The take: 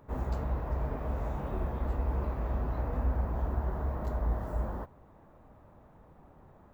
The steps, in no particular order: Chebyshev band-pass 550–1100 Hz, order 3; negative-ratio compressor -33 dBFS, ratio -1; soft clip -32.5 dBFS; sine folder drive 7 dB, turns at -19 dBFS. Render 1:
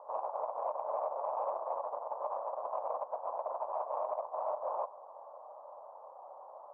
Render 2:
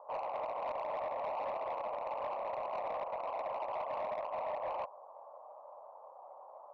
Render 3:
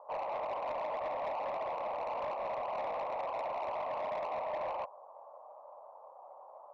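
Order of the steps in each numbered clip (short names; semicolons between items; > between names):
negative-ratio compressor > soft clip > Chebyshev band-pass > sine folder; sine folder > Chebyshev band-pass > negative-ratio compressor > soft clip; Chebyshev band-pass > sine folder > soft clip > negative-ratio compressor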